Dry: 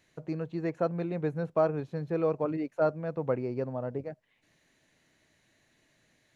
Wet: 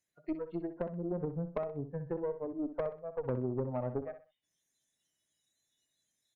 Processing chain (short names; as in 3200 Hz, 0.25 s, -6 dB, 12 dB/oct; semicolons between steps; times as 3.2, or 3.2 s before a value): treble ducked by the level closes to 330 Hz, closed at -27 dBFS; spectral noise reduction 23 dB; tube stage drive 29 dB, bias 0.55; on a send: feedback echo 63 ms, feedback 31%, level -11 dB; on the sum: gain +3 dB